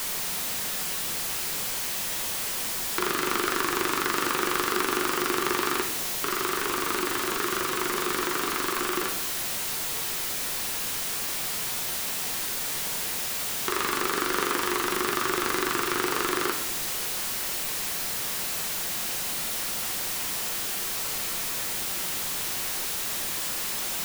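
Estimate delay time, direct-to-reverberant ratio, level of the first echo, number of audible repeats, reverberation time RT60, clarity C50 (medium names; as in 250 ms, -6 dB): no echo, 5.0 dB, no echo, no echo, 0.75 s, 9.5 dB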